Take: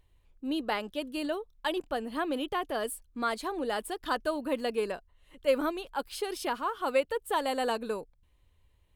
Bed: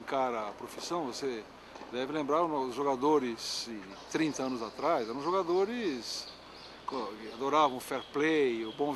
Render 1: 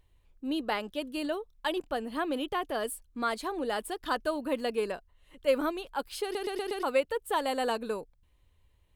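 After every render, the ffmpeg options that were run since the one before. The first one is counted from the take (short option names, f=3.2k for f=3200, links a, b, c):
-filter_complex "[0:a]asplit=6[a][b][c][d][e][f];[a]atrim=end=6.352[g];[b]atrim=start=6.228:end=6.352[h];[c]atrim=start=6.228:end=6.352[i];[d]atrim=start=6.228:end=6.352[j];[e]atrim=start=6.228:end=6.352[k];[f]atrim=start=6.828[l];[g][h]acrossfade=d=0.004:c1=hsin:c2=hsin[m];[m][i]acrossfade=d=0.004:c1=hsin:c2=hsin[n];[n][j]acrossfade=d=0.004:c1=hsin:c2=hsin[o];[o][k]acrossfade=d=0.004:c1=hsin:c2=hsin[p];[p][l]acrossfade=d=0.004:c1=hsin:c2=hsin"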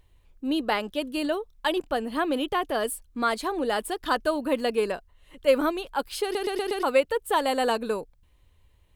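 -af "volume=5.5dB"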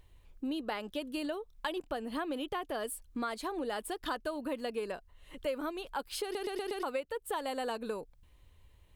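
-af "acompressor=threshold=-35dB:ratio=4"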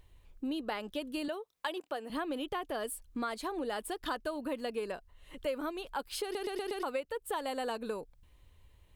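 -filter_complex "[0:a]asettb=1/sr,asplit=3[a][b][c];[a]atrim=end=1.284[d];[b]atrim=start=1.28:end=2.1,asetpts=PTS-STARTPTS,afade=t=in:d=0.004:c=qsin,afade=t=out:st=0.816:d=0.004:c=qsin,highpass=350[e];[c]atrim=start=2.096[f];[d][e]acrossfade=d=0.004:c1=hsin:c2=qsin[g];[g][f]acrossfade=d=0.004:c1=qsin:c2=hsin"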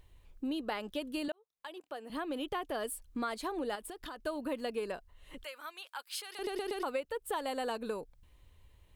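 -filter_complex "[0:a]asettb=1/sr,asplit=3[a][b][c];[a]atrim=end=3.754[d];[b]atrim=start=3.75:end=4.2,asetpts=PTS-STARTPTS,afade=t=in:d=0.004:c=qsin,afade=t=out:st=0.446:d=0.004:c=qsin,acompressor=threshold=-40dB:ratio=10:attack=3.2:release=140:knee=1:detection=peak[e];[c]atrim=start=4.196[f];[d][e]acrossfade=d=0.004:c1=hsin:c2=qsin[g];[g][f]acrossfade=d=0.004:c1=qsin:c2=hsin,asettb=1/sr,asplit=3[h][i][j];[h]atrim=end=5.444[k];[i]atrim=start=5.44:end=6.39,asetpts=PTS-STARTPTS,afade=t=in:d=0.004:c=qsin,afade=t=out:st=0.946:d=0.004:c=qsin,highpass=1.3k[l];[j]atrim=start=6.386[m];[k][l]acrossfade=d=0.004:c1=hsin:c2=qsin[n];[n][m]acrossfade=d=0.004:c1=qsin:c2=hsin,asplit=2[o][p];[o]atrim=end=1.32,asetpts=PTS-STARTPTS,afade=t=out:st=1.316:d=0.004:c=hsin[q];[p]atrim=start=1.32,asetpts=PTS-STARTPTS,afade=t=in:d=1.12[r];[q][r]concat=n=2:v=0:a=1"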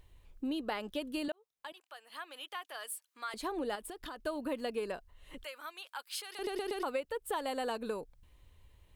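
-filter_complex "[0:a]asettb=1/sr,asplit=3[a][b][c];[a]atrim=end=1.724[d];[b]atrim=start=1.72:end=3.34,asetpts=PTS-STARTPTS,afade=t=in:d=0.004:c=qsin,afade=t=out:st=1.616:d=0.004:c=qsin,highpass=1.2k[e];[c]atrim=start=3.336[f];[d][e]acrossfade=d=0.004:c1=hsin:c2=qsin[g];[g][f]acrossfade=d=0.004:c1=qsin:c2=hsin"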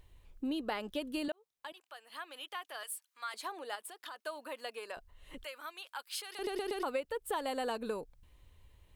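-filter_complex "[0:a]asettb=1/sr,asplit=3[a][b][c];[a]atrim=end=2.834[d];[b]atrim=start=2.83:end=4.97,asetpts=PTS-STARTPTS,afade=t=in:d=0.004:c=qsin,afade=t=out:st=2.136:d=0.004:c=qsin,highpass=740[e];[c]atrim=start=4.966[f];[d][e]acrossfade=d=0.004:c1=hsin:c2=qsin[g];[g][f]acrossfade=d=0.004:c1=qsin:c2=hsin"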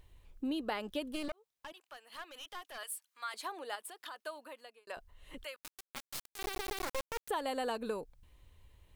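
-filter_complex "[0:a]asettb=1/sr,asplit=3[a][b][c];[a]atrim=end=1.124[d];[b]atrim=start=1.12:end=2.78,asetpts=PTS-STARTPTS,afade=t=in:d=0.004:c=qsin,afade=t=out:st=1.656:d=0.004:c=qsin,aeval=exprs='clip(val(0),-1,0.00473)':c=same[e];[c]atrim=start=2.776[f];[d][e]acrossfade=d=0.004:c1=hsin:c2=qsin[g];[g][f]acrossfade=d=0.004:c1=qsin:c2=hsin,asettb=1/sr,asplit=3[h][i][j];[h]atrim=end=5.564[k];[i]atrim=start=5.56:end=7.29,asetpts=PTS-STARTPTS,afade=t=in:d=0.004:c=qsin,afade=t=out:st=1.726:d=0.004:c=qsin,acrusher=bits=3:dc=4:mix=0:aa=0.000001[l];[j]atrim=start=7.286[m];[k][l]acrossfade=d=0.004:c1=hsin:c2=qsin[n];[n][m]acrossfade=d=0.004:c1=qsin:c2=hsin,asplit=2[o][p];[o]atrim=end=4.87,asetpts=PTS-STARTPTS,afade=t=out:st=4.14:d=0.73[q];[p]atrim=start=4.87,asetpts=PTS-STARTPTS,afade=t=in:d=0.004:c=hsin[r];[q][r]concat=n=2:v=0:a=1"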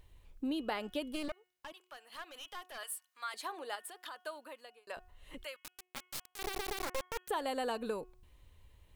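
-af "bandreject=f=364.7:t=h:w=4,bandreject=f=729.4:t=h:w=4,bandreject=f=1.0941k:t=h:w=4,bandreject=f=1.4588k:t=h:w=4,bandreject=f=1.8235k:t=h:w=4,bandreject=f=2.1882k:t=h:w=4,bandreject=f=2.5529k:t=h:w=4,bandreject=f=2.9176k:t=h:w=4,bandreject=f=3.2823k:t=h:w=4"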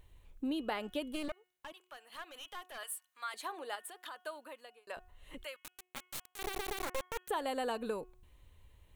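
-af "equalizer=f=5k:w=3.9:g=-6"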